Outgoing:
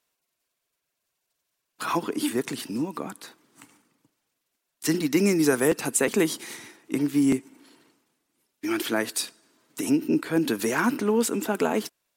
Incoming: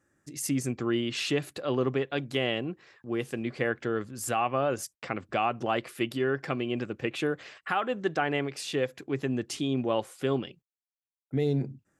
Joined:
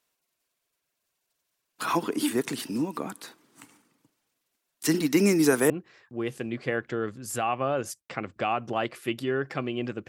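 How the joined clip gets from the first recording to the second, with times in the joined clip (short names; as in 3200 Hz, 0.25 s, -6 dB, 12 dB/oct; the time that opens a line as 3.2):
outgoing
5.7 switch to incoming from 2.63 s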